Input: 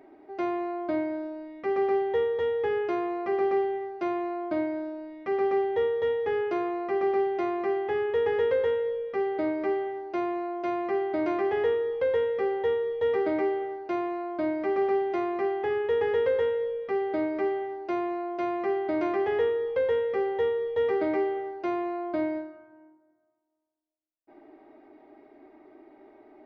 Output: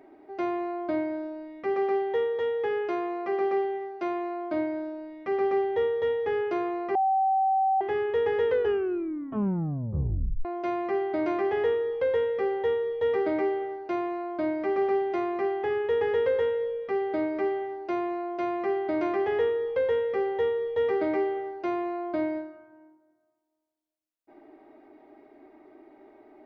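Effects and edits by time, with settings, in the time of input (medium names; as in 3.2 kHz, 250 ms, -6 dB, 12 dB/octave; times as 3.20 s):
1.74–4.54 s: high-pass 210 Hz 6 dB/octave
6.95–7.81 s: bleep 770 Hz -20.5 dBFS
8.46 s: tape stop 1.99 s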